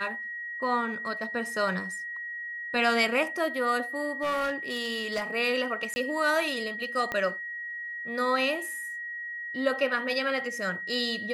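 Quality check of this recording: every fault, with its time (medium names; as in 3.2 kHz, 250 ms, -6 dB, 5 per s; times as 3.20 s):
whine 1.9 kHz -34 dBFS
4.22–5.23 s: clipped -25 dBFS
5.94–5.96 s: dropout 20 ms
7.12 s: pop -17 dBFS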